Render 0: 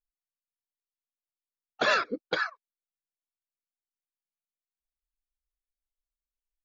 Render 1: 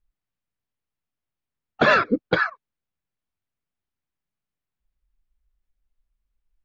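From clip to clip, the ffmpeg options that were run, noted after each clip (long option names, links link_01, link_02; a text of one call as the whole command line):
ffmpeg -i in.wav -af "bass=frequency=250:gain=13,treble=frequency=4000:gain=-14,volume=8dB" out.wav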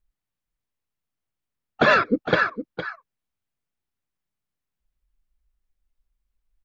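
ffmpeg -i in.wav -af "aecho=1:1:460:0.299" out.wav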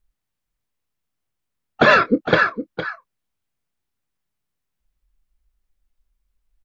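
ffmpeg -i in.wav -filter_complex "[0:a]asplit=2[link_01][link_02];[link_02]adelay=25,volume=-13dB[link_03];[link_01][link_03]amix=inputs=2:normalize=0,volume=4dB" out.wav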